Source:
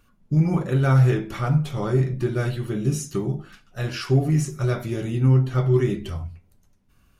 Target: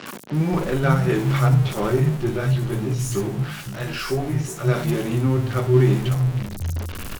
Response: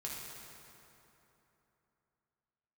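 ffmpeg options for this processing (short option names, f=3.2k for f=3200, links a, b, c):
-filter_complex "[0:a]aeval=exprs='val(0)+0.5*0.0447*sgn(val(0))':c=same,asettb=1/sr,asplit=3[a][b][c];[a]atrim=end=2.174[d];[b]atrim=start=2.17:end=4.65,asetpts=PTS-STARTPTS,afade=t=in:d=0.004:c=qsin,afade=t=out:st=2.476:d=0.004:c=qsin,flanger=delay=15:depth=3.9:speed=2.9[e];[c]atrim=start=4.646[f];[d][e]acrossfade=d=0.004:c1=hsin:c2=qsin[g];[g][f]acrossfade=d=0.004:c1=qsin:c2=hsin,acrossover=split=160|5200[h][i][j];[j]adelay=60[k];[h]adelay=520[l];[l][i][k]amix=inputs=3:normalize=0,volume=2dB" -ar 48000 -c:a libopus -b:a 64k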